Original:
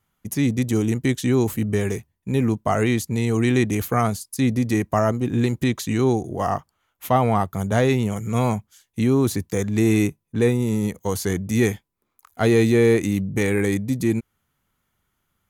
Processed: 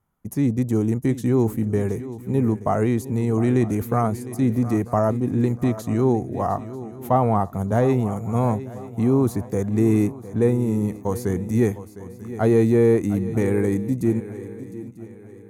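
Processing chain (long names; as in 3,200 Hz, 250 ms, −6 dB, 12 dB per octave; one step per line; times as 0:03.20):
drawn EQ curve 950 Hz 0 dB, 3,200 Hz −15 dB, 9,800 Hz −7 dB
feedback echo with a long and a short gap by turns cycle 943 ms, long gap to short 3 to 1, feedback 34%, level −15 dB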